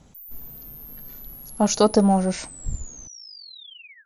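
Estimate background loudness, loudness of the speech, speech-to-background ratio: −39.5 LKFS, −20.5 LKFS, 19.0 dB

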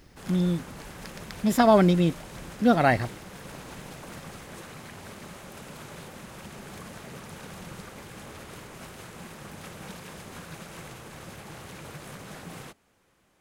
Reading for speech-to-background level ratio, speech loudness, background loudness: 19.5 dB, −23.0 LKFS, −42.5 LKFS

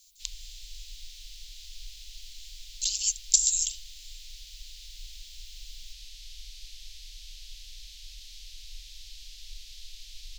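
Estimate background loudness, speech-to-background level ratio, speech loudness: −45.5 LKFS, 19.5 dB, −26.0 LKFS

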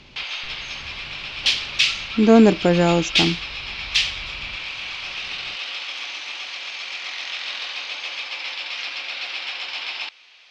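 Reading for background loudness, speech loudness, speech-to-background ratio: −25.5 LKFS, −17.5 LKFS, 8.0 dB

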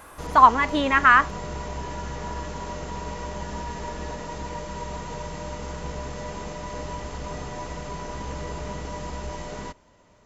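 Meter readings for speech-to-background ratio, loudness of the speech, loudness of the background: 17.0 dB, −17.5 LKFS, −34.5 LKFS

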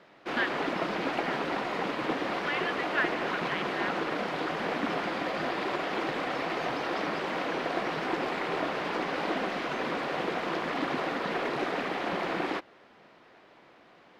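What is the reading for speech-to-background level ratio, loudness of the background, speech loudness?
−4.0 dB, −31.5 LKFS, −35.5 LKFS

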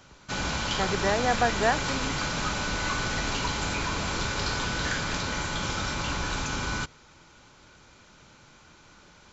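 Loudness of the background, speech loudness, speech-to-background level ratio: −29.0 LKFS, −28.0 LKFS, 1.0 dB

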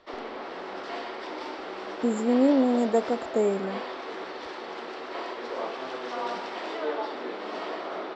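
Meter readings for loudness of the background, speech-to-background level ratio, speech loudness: −35.0 LKFS, 10.0 dB, −25.0 LKFS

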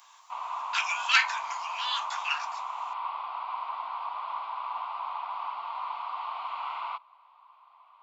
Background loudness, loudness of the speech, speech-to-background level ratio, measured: −35.0 LKFS, −28.5 LKFS, 6.5 dB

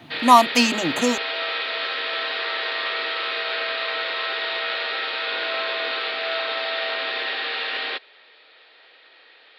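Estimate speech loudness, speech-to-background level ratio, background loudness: −18.0 LKFS, 7.0 dB, −25.0 LKFS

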